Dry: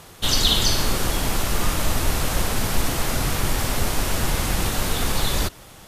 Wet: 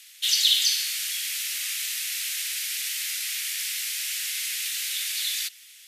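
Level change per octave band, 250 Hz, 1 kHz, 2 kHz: below −40 dB, −27.5 dB, −4.0 dB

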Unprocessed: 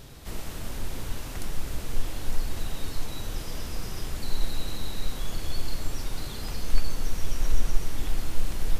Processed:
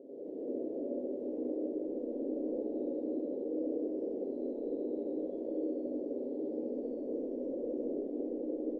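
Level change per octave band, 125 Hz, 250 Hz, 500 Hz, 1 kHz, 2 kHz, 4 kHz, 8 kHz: below −25 dB, +7.0 dB, +9.5 dB, −15.0 dB, below −35 dB, below −40 dB, below −40 dB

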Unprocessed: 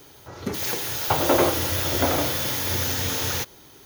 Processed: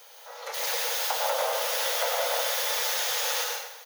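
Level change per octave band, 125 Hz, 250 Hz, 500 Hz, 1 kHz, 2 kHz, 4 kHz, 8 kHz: below −40 dB, below −40 dB, −4.5 dB, −2.5 dB, −1.0 dB, 0.0 dB, −1.0 dB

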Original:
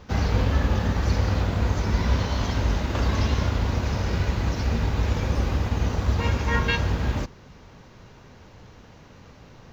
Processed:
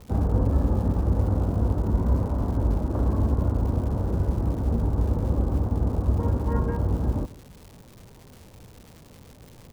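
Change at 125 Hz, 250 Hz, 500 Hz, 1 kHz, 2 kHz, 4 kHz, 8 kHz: 0.0 dB, +1.5 dB, −0.5 dB, −5.0 dB, −18.5 dB, below −15 dB, can't be measured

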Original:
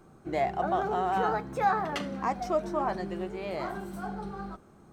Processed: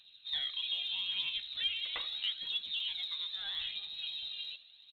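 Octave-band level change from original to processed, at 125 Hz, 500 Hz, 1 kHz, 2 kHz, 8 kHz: below −25 dB, −35.0 dB, −30.5 dB, −6.0 dB, below −15 dB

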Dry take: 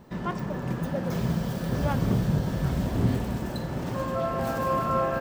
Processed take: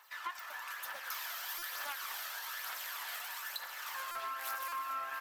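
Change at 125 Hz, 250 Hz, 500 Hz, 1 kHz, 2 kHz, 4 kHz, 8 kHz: below −40 dB, below −40 dB, −26.0 dB, −9.5 dB, −1.0 dB, +0.5 dB, +2.0 dB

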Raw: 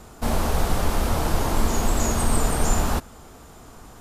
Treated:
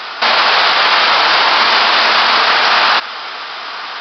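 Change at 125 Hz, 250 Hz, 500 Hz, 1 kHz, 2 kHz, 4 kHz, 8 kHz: below −15 dB, −5.0 dB, +8.0 dB, +17.0 dB, +23.5 dB, +25.0 dB, −7.0 dB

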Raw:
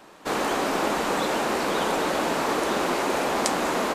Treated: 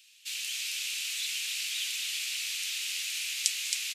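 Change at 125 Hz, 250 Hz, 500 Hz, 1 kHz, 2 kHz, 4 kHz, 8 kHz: below −40 dB, below −40 dB, below −40 dB, below −35 dB, −7.0 dB, +2.0 dB, +2.5 dB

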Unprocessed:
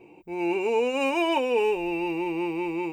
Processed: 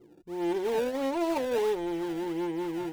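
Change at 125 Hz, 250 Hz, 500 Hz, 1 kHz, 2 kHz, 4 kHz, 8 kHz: −2.0, −3.0, −3.5, −6.0, −10.5, −8.0, 0.0 decibels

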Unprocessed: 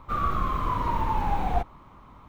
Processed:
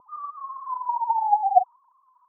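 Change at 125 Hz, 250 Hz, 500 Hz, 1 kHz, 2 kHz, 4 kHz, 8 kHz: below −40 dB, below −35 dB, +3.5 dB, +5.5 dB, below −30 dB, below −40 dB, can't be measured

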